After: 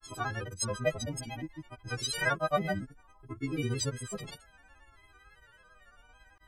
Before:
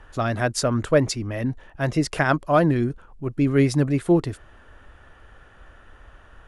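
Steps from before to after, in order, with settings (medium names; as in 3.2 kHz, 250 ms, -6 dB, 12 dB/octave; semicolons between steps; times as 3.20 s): partials quantised in pitch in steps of 4 st; granulator 100 ms, grains 18 per s, pitch spread up and down by 3 st; Shepard-style flanger rising 0.61 Hz; trim -7 dB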